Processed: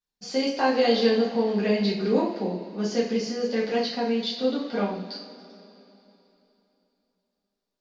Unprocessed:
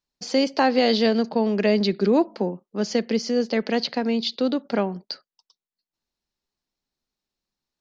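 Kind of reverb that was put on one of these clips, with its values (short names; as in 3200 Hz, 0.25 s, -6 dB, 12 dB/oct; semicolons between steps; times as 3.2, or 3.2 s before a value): two-slope reverb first 0.49 s, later 3.3 s, from -18 dB, DRR -8 dB; gain -11.5 dB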